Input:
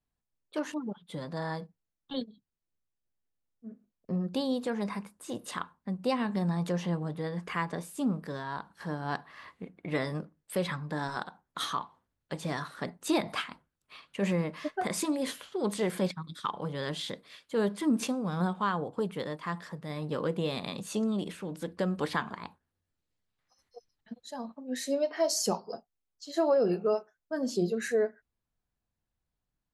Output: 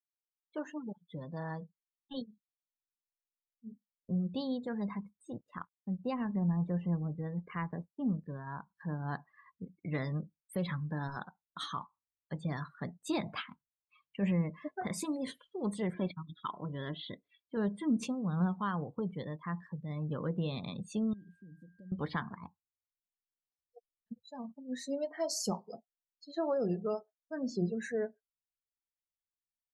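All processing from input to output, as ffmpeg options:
-filter_complex "[0:a]asettb=1/sr,asplit=3[a][b][c];[a]atrim=end=5.324[d];[b]atrim=start=5.32:end=8.47,asetpts=PTS-STARTPTS,afade=t=in:d=0.004:c=qsin,afade=t=out:st=3.146:d=0.004:c=qsin,lowpass=f=2.6k:p=1,aeval=exprs='sgn(val(0))*max(abs(val(0))-0.00251,0)':c=same[e];[c]atrim=start=8.466[f];[d][e]acrossfade=d=0.004:c1=hsin:c2=qsin[g];[g][f]acrossfade=d=0.004:c1=qsin:c2=hsin,asettb=1/sr,asplit=3[h][i][j];[h]atrim=end=15.934[k];[i]atrim=start=15.93:end=17.57,asetpts=PTS-STARTPTS,afade=t=in:d=0.004:c=qsin,afade=t=out:st=1.636:d=0.004:c=qsin,lowpass=f=4.1k:w=0.5412,lowpass=f=4.1k:w=1.3066,aecho=1:1:3:0.39,atrim=end_sample=72324[l];[j]atrim=start=17.566[m];[k][l]acrossfade=d=0.004:c1=hsin:c2=qsin[n];[n][m]acrossfade=d=0.004:c1=qsin:c2=hsin,asettb=1/sr,asplit=3[o][p][q];[o]atrim=end=21.134[r];[p]atrim=start=21.13:end=21.92,asetpts=PTS-STARTPTS,afade=t=in:d=0.004:c=qsin,afade=t=out:st=0.786:d=0.004:c=qsin,equalizer=f=1.1k:w=0.33:g=-9,acompressor=threshold=-47dB:ratio=6:attack=3.2:release=140:knee=1:detection=peak,aeval=exprs='val(0)+0.00126*sin(2*PI*1600*n/s)':c=same[s];[q]atrim=start=21.916[t];[r][s]acrossfade=d=0.004:c1=hsin:c2=qsin[u];[u][t]acrossfade=d=0.004:c1=qsin:c2=hsin,afftdn=nr=31:nf=-41,asubboost=boost=3:cutoff=200,volume=-5.5dB"

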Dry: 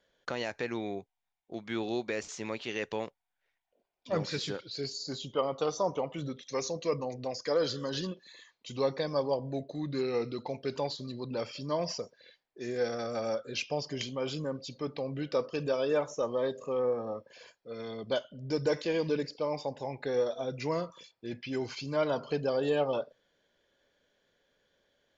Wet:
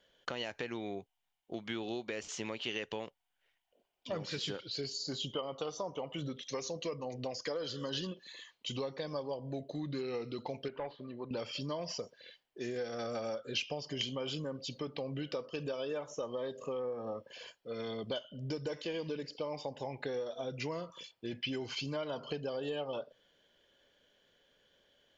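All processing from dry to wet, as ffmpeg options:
-filter_complex "[0:a]asettb=1/sr,asplit=3[a][b][c];[a]atrim=end=10.684[d];[b]atrim=start=10.68:end=11.31,asetpts=PTS-STARTPTS,afade=t=in:d=0.004:c=qsin,afade=t=out:st=0.626:d=0.004:c=qsin,equalizer=f=67:w=0.3:g=-13.5,asoftclip=type=hard:threshold=-30dB,lowpass=f=2.2k:w=0.5412,lowpass=f=2.2k:w=1.3066[e];[c]atrim=start=11.306[f];[d][e]acrossfade=d=0.004:c1=hsin:c2=qsin[g];[g][f]acrossfade=d=0.004:c1=qsin:c2=hsin,acompressor=threshold=-37dB:ratio=6,equalizer=f=3k:t=o:w=0.24:g=10,volume=1.5dB"

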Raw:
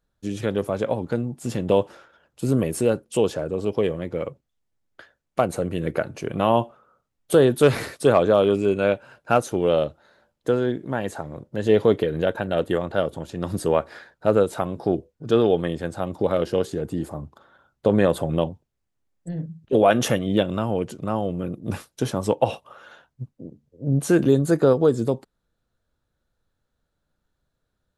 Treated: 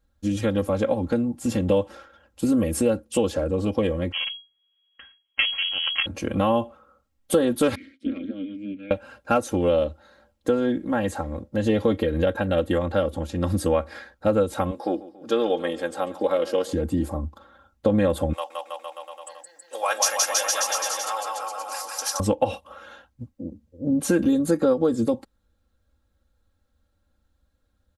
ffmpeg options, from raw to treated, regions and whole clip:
-filter_complex "[0:a]asettb=1/sr,asplit=3[a][b][c];[a]atrim=end=4.124[d];[b]atrim=start=4.12:end=6.06,asetpts=PTS-STARTPTS,afade=t=in:d=0.004:c=qsin,afade=t=out:st=1.936:d=0.004:c=qsin,aeval=exprs='max(val(0),0)':c=same,lowpass=f=2.8k:t=q:w=0.5098,lowpass=f=2.8k:t=q:w=0.6013,lowpass=f=2.8k:t=q:w=0.9,lowpass=f=2.8k:t=q:w=2.563,afreqshift=-3300[e];[c]atrim=start=6.056[f];[d][e]acrossfade=d=0.004:c1=hsin:c2=qsin[g];[g][f]acrossfade=d=0.004:c1=qsin:c2=hsin,asettb=1/sr,asplit=3[h][i][j];[h]atrim=end=7.754[k];[i]atrim=start=7.75:end=8.91,asetpts=PTS-STARTPTS,afade=t=in:d=0.004:c=qsin,afade=t=out:st=1.156:d=0.004:c=qsin,highshelf=f=7k:g=-9.5,tremolo=f=200:d=0.919,asplit=3[l][m][n];[l]bandpass=f=270:t=q:w=8,volume=0dB[o];[m]bandpass=f=2.29k:t=q:w=8,volume=-6dB[p];[n]bandpass=f=3.01k:t=q:w=8,volume=-9dB[q];[o][p][q]amix=inputs=3:normalize=0[r];[j]atrim=start=8.906[s];[k][r]acrossfade=d=0.004:c1=hsin:c2=qsin[t];[t][s]acrossfade=d=0.004:c1=qsin:c2=hsin,asettb=1/sr,asplit=3[u][v][w];[u]atrim=end=14.714[x];[v]atrim=start=14.71:end=16.73,asetpts=PTS-STARTPTS,afade=t=in:d=0.004:c=qsin,afade=t=out:st=2.016:d=0.004:c=qsin,highpass=400,aecho=1:1:140|280|420|560:0.112|0.0606|0.0327|0.0177,atrim=end_sample=89082[y];[w]atrim=start=16.726[z];[x][y]acrossfade=d=0.004:c1=hsin:c2=qsin[aa];[aa][z]acrossfade=d=0.004:c1=qsin:c2=hsin,asettb=1/sr,asplit=3[ab][ac][ad];[ab]atrim=end=18.334[ae];[ac]atrim=start=18.33:end=22.2,asetpts=PTS-STARTPTS,afade=t=in:d=0.004:c=qsin,afade=t=out:st=3.866:d=0.004:c=qsin,highpass=f=840:w=0.5412,highpass=f=840:w=1.3066,highshelf=f=4.1k:t=q:w=3:g=6.5,aecho=1:1:170|323|460.7|584.6|696.2|796.6|886.9|968.2:0.794|0.631|0.501|0.398|0.316|0.251|0.2|0.158,atrim=end_sample=170667[af];[ad]atrim=start=22.196[ag];[ae][af]acrossfade=d=0.004:c1=hsin:c2=qsin[ah];[ah][ag]acrossfade=d=0.004:c1=qsin:c2=hsin,equalizer=f=77:t=o:w=1.5:g=10.5,aecho=1:1:3.7:0.92,acompressor=threshold=-19dB:ratio=2.5"

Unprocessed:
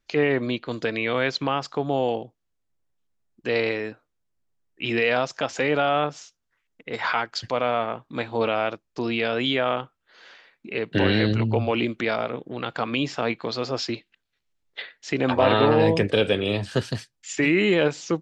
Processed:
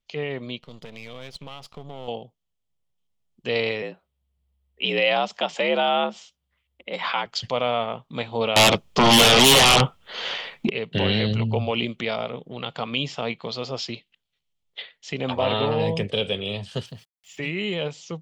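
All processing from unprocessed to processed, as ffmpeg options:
-filter_complex "[0:a]asettb=1/sr,asplit=3[a][b][c];[a]atrim=end=0.594[d];[b]atrim=start=0.59:end=2.08,asetpts=PTS-STARTPTS,afade=t=in:d=0.004:c=qsin,afade=t=out:st=1.486:d=0.004:c=qsin,aeval=exprs='if(lt(val(0),0),0.251*val(0),val(0))':c=same,acompressor=threshold=-30dB:ratio=2:attack=3.2:release=140:knee=1:detection=peak[e];[c]atrim=start=2.076[f];[d][e]acrossfade=d=0.004:c1=hsin:c2=qsin[g];[g][f]acrossfade=d=0.004:c1=qsin:c2=hsin,asettb=1/sr,asplit=3[h][i][j];[h]atrim=end=3.824[k];[i]atrim=start=3.82:end=7.26,asetpts=PTS-STARTPTS,afade=t=in:d=0.004:c=qsin,afade=t=out:st=3.436:d=0.004:c=qsin,equalizer=f=6.2k:t=o:w=0.73:g=-8.5,afreqshift=67[l];[j]atrim=start=7.256[m];[k][l]acrossfade=d=0.004:c1=hsin:c2=qsin[n];[n][m]acrossfade=d=0.004:c1=qsin:c2=hsin,asettb=1/sr,asplit=3[o][p][q];[o]atrim=end=8.564[r];[p]atrim=start=8.56:end=10.7,asetpts=PTS-STARTPTS,afade=t=in:d=0.004:c=qsin,afade=t=out:st=2.136:d=0.004:c=qsin,highshelf=f=3.3k:g=-6.5,aeval=exprs='0.299*sin(PI/2*7.94*val(0)/0.299)':c=same[s];[q]atrim=start=10.696[t];[r][s]acrossfade=d=0.004:c1=hsin:c2=qsin[u];[u][t]acrossfade=d=0.004:c1=qsin:c2=hsin,asettb=1/sr,asplit=3[v][w][x];[v]atrim=end=16.864[y];[w]atrim=start=16.86:end=17.38,asetpts=PTS-STARTPTS,afade=t=in:d=0.004:c=qsin,afade=t=out:st=0.516:d=0.004:c=qsin,highshelf=f=3.6k:g=-11,acompressor=threshold=-34dB:ratio=2:attack=3.2:release=140:knee=1:detection=peak,aeval=exprs='val(0)*gte(abs(val(0)),0.00299)':c=same[z];[x]atrim=start=17.376[aa];[y][z]acrossfade=d=0.004:c1=hsin:c2=qsin[ab];[ab][aa]acrossfade=d=0.004:c1=qsin:c2=hsin,equalizer=f=1.4k:w=1.5:g=-2,dynaudnorm=f=870:g=7:m=11.5dB,equalizer=f=160:t=o:w=0.33:g=5,equalizer=f=315:t=o:w=0.33:g=-11,equalizer=f=1.6k:t=o:w=0.33:g=-8,equalizer=f=3.15k:t=o:w=0.33:g=8,volume=-6.5dB"

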